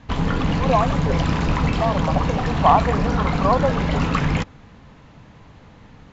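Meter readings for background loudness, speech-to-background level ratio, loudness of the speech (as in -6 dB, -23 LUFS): -22.0 LUFS, -1.0 dB, -23.0 LUFS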